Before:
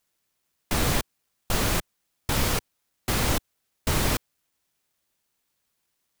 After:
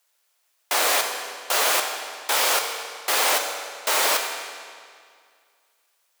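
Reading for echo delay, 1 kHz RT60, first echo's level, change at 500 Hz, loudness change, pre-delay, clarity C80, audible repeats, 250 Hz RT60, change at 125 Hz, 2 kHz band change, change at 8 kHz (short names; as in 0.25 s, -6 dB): none, 2.1 s, none, +4.5 dB, +5.0 dB, 9 ms, 6.0 dB, none, 2.1 s, under -35 dB, +7.5 dB, +7.5 dB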